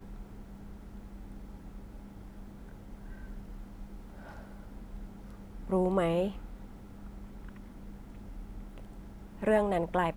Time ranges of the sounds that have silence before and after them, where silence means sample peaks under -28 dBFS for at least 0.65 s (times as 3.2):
5.72–6.28